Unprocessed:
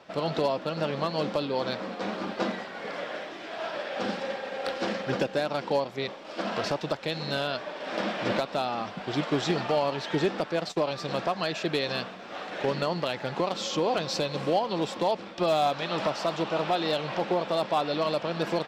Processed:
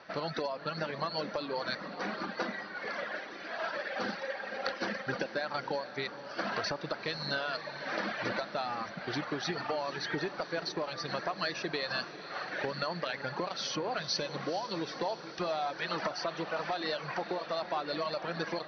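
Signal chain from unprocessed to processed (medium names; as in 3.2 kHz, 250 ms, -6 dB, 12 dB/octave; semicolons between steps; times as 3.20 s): reverb removal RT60 1.9 s; compression, threshold -29 dBFS, peak gain reduction 8.5 dB; rippled Chebyshev low-pass 6.1 kHz, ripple 9 dB; on a send: echo that smears into a reverb 476 ms, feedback 61%, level -12 dB; on the sum: trim +5.5 dB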